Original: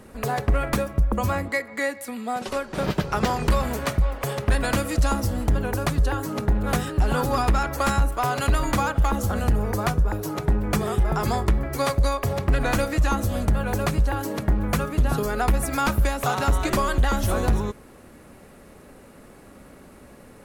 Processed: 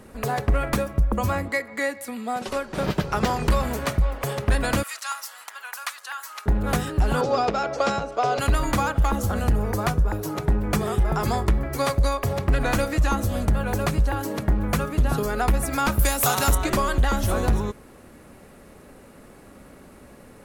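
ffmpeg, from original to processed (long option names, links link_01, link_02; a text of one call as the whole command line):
ffmpeg -i in.wav -filter_complex "[0:a]asettb=1/sr,asplit=3[link_01][link_02][link_03];[link_01]atrim=end=4.834[link_04];[link_02]atrim=start=4.83:end=6.46,asetpts=PTS-STARTPTS,afade=type=in:duration=0.004:curve=qsin,afade=type=out:start_time=1.626:duration=0.004:curve=qsin,highpass=frequency=1100:width=0.5412,highpass=frequency=1100:width=1.3066[link_05];[link_03]atrim=start=6.456[link_06];[link_04][link_05]acrossfade=duration=0.004:curve1=hsin:curve2=qsin[link_07];[link_07][link_06]acrossfade=duration=0.004:curve1=qsin:curve2=hsin,asettb=1/sr,asplit=3[link_08][link_09][link_10];[link_08]atrim=end=7.214[link_11];[link_09]atrim=start=7.21:end=8.39,asetpts=PTS-STARTPTS,afade=type=in:duration=0.004:curve=qsin,afade=type=out:start_time=1.176:duration=0.004:curve=qsin,highpass=180,equalizer=frequency=290:width_type=q:width=4:gain=-5,equalizer=frequency=460:width_type=q:width=4:gain=8,equalizer=frequency=660:width_type=q:width=4:gain=7,equalizer=frequency=1000:width_type=q:width=4:gain=-5,equalizer=frequency=1800:width_type=q:width=4:gain=-6,equalizer=frequency=5500:width_type=q:width=4:gain=3,lowpass=frequency=6200:width=0.5412,lowpass=frequency=6200:width=1.3066[link_12];[link_10]atrim=start=8.386[link_13];[link_11][link_12]acrossfade=duration=0.004:curve1=hsin:curve2=qsin[link_14];[link_14][link_13]acrossfade=duration=0.004:curve1=qsin:curve2=hsin,asettb=1/sr,asplit=3[link_15][link_16][link_17];[link_15]atrim=end=15.994[link_18];[link_16]atrim=start=15.99:end=16.55,asetpts=PTS-STARTPTS,afade=type=in:duration=0.004:curve=qsin,afade=type=out:start_time=0.556:duration=0.004:curve=qsin,aemphasis=mode=production:type=75kf[link_19];[link_17]atrim=start=16.546[link_20];[link_18][link_19]acrossfade=duration=0.004:curve1=hsin:curve2=qsin[link_21];[link_21][link_20]acrossfade=duration=0.004:curve1=qsin:curve2=hsin" out.wav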